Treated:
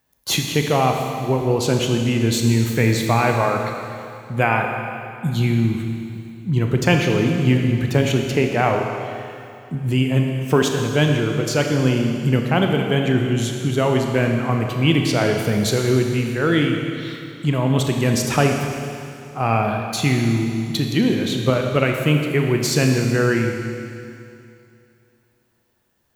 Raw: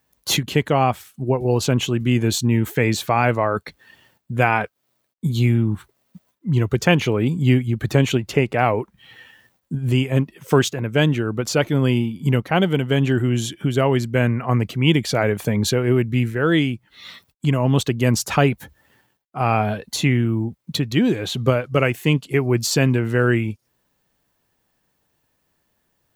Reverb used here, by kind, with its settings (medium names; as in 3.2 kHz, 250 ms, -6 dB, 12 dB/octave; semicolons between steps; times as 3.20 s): Schroeder reverb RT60 2.6 s, combs from 27 ms, DRR 2.5 dB; trim -1 dB